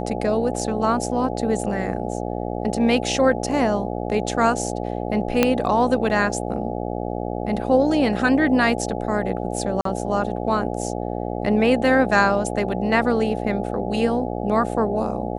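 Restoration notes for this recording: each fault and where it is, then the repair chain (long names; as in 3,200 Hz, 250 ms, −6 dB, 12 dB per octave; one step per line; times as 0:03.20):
mains buzz 60 Hz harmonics 14 −27 dBFS
0:05.43: click −2 dBFS
0:09.81–0:09.85: drop-out 43 ms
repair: click removal
hum removal 60 Hz, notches 14
repair the gap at 0:09.81, 43 ms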